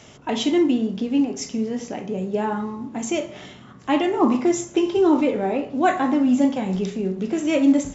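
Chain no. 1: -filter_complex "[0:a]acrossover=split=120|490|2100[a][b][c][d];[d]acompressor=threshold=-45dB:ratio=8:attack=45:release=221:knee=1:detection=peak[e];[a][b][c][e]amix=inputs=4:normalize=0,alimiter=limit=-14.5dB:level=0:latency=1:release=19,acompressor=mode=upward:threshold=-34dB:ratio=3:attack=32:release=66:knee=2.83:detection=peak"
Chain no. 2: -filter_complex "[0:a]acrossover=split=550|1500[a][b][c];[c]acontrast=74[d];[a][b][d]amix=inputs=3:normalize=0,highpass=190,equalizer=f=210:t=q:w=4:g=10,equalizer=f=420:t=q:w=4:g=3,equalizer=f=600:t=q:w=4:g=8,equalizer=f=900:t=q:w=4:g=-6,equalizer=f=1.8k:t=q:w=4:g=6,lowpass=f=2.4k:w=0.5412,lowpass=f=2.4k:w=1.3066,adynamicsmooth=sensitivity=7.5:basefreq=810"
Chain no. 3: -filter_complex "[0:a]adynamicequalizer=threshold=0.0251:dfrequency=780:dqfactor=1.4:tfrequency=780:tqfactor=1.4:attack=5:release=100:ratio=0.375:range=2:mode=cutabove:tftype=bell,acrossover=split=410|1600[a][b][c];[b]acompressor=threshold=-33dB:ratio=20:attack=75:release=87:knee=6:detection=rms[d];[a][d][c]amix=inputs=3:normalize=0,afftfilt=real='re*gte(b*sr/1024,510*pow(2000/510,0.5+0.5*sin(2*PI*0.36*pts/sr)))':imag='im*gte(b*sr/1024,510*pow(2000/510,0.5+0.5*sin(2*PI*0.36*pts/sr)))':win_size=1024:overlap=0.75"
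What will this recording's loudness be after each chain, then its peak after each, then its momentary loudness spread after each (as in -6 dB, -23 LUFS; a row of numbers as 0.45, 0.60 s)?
-24.0, -19.0, -35.0 LUFS; -8.5, -3.0, -15.5 dBFS; 8, 8, 12 LU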